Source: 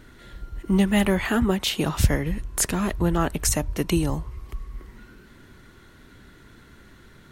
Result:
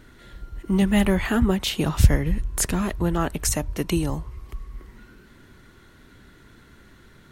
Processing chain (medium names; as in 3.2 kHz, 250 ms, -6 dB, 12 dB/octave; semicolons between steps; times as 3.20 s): 0.82–2.82 s: bass shelf 140 Hz +7.5 dB; trim -1 dB